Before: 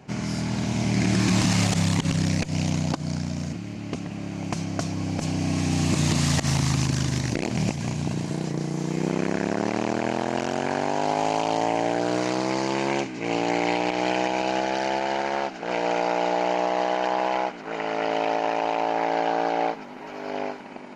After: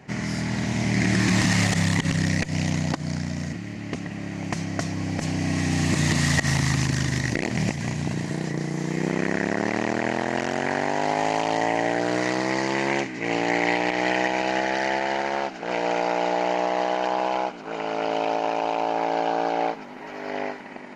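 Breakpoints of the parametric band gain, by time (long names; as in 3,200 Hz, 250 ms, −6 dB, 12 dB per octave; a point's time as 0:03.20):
parametric band 1,900 Hz 0.26 octaves
0:14.94 +12.5 dB
0:15.34 +3 dB
0:16.73 +3 dB
0:17.36 −7 dB
0:19.33 −7 dB
0:19.84 +3 dB
0:20.30 +10 dB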